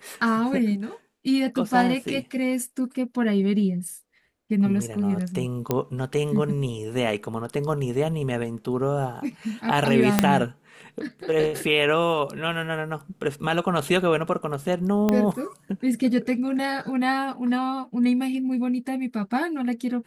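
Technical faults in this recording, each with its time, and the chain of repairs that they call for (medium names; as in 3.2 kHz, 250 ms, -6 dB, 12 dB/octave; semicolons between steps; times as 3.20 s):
5.71 s: pop -9 dBFS
10.19 s: pop -1 dBFS
15.09 s: pop -9 dBFS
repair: de-click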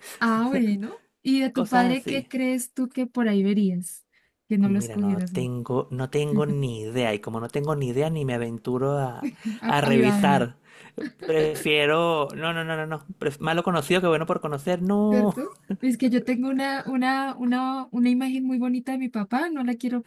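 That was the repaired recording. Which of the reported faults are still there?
10.19 s: pop
15.09 s: pop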